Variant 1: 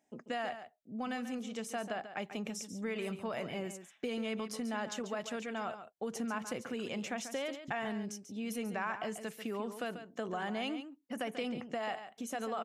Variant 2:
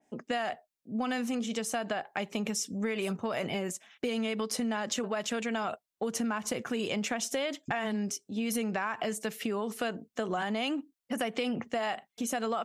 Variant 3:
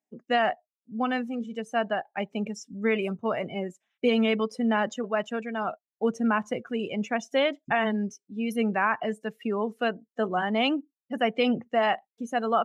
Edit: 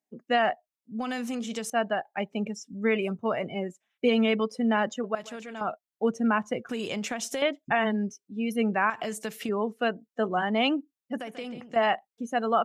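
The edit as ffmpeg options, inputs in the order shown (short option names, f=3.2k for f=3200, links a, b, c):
-filter_complex "[1:a]asplit=3[a][b][c];[0:a]asplit=2[d][e];[2:a]asplit=6[f][g][h][i][j][k];[f]atrim=end=0.992[l];[a]atrim=start=0.988:end=1.702[m];[g]atrim=start=1.698:end=5.152[n];[d]atrim=start=5.148:end=5.612[o];[h]atrim=start=5.608:end=6.692[p];[b]atrim=start=6.688:end=7.422[q];[i]atrim=start=7.418:end=8.902[r];[c]atrim=start=8.898:end=9.492[s];[j]atrim=start=9.488:end=11.202[t];[e]atrim=start=11.198:end=11.762[u];[k]atrim=start=11.758[v];[l][m]acrossfade=d=0.004:c1=hsin:c2=hsin[w];[w][n]acrossfade=d=0.004:c1=hsin:c2=hsin[x];[x][o]acrossfade=d=0.004:c1=hsin:c2=hsin[y];[y][p]acrossfade=d=0.004:c1=hsin:c2=hsin[z];[z][q]acrossfade=d=0.004:c1=hsin:c2=hsin[aa];[aa][r]acrossfade=d=0.004:c1=hsin:c2=hsin[ab];[ab][s]acrossfade=d=0.004:c1=hsin:c2=hsin[ac];[ac][t]acrossfade=d=0.004:c1=hsin:c2=hsin[ad];[ad][u]acrossfade=d=0.004:c1=hsin:c2=hsin[ae];[ae][v]acrossfade=d=0.004:c1=hsin:c2=hsin"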